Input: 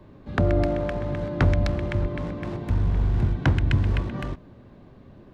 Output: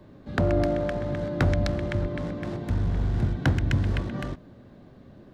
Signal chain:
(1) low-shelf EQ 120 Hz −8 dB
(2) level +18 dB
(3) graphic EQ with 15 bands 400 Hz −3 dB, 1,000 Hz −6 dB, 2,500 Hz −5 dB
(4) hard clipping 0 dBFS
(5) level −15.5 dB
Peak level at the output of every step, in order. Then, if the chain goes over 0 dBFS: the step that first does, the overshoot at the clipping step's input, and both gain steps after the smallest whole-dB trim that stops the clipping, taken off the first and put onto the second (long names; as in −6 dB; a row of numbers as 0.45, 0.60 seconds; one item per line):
−10.5, +7.5, +6.0, 0.0, −15.5 dBFS
step 2, 6.0 dB
step 2 +12 dB, step 5 −9.5 dB